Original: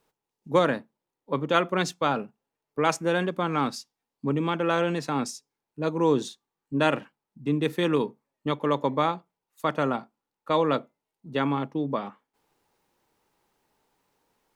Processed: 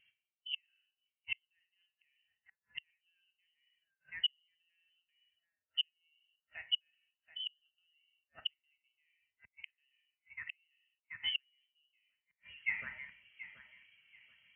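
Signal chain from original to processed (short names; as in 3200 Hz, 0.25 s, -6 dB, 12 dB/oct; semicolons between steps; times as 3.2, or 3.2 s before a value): in parallel at +2 dB: vocal rider 2 s; on the sum: thin delay 0.731 s, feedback 33%, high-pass 2200 Hz, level -7.5 dB; non-linear reverb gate 0.24 s falling, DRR 5.5 dB; inverted band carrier 3200 Hz; reverse; compressor 8:1, threshold -29 dBFS, peak gain reduction 19 dB; reverse; flipped gate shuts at -30 dBFS, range -41 dB; HPF 58 Hz; band shelf 580 Hz -8.5 dB 2.5 oct; spectral expander 1.5:1; gain +7.5 dB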